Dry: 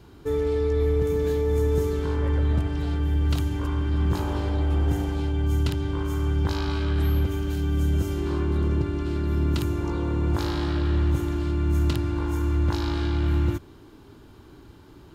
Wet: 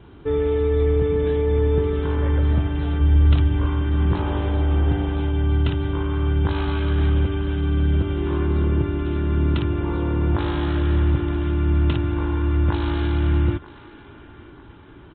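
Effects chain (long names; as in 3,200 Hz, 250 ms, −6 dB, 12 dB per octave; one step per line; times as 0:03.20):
0:03.01–0:03.68: low-shelf EQ 73 Hz +9.5 dB
feedback echo with a band-pass in the loop 938 ms, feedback 50%, band-pass 1,500 Hz, level −15 dB
downsampling to 8,000 Hz
level +4 dB
MP3 32 kbit/s 44,100 Hz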